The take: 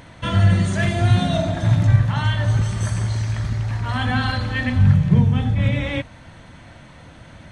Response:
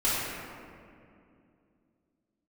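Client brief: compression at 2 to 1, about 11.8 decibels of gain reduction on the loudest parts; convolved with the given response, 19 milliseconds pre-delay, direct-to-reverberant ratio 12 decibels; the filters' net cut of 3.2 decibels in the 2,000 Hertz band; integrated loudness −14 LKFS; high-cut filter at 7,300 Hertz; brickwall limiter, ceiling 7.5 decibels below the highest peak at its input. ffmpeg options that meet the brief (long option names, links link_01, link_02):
-filter_complex "[0:a]lowpass=7300,equalizer=frequency=2000:width_type=o:gain=-4,acompressor=threshold=-32dB:ratio=2,alimiter=limit=-23.5dB:level=0:latency=1,asplit=2[link_01][link_02];[1:a]atrim=start_sample=2205,adelay=19[link_03];[link_02][link_03]afir=irnorm=-1:irlink=0,volume=-24.5dB[link_04];[link_01][link_04]amix=inputs=2:normalize=0,volume=17dB"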